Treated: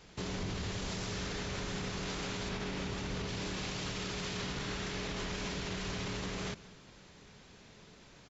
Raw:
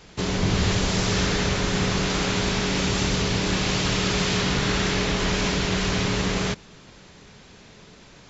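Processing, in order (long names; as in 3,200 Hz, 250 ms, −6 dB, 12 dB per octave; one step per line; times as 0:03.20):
0:02.49–0:03.28: high-shelf EQ 4,300 Hz −9 dB
brickwall limiter −21 dBFS, peak gain reduction 10.5 dB
single-tap delay 189 ms −20 dB
level −8.5 dB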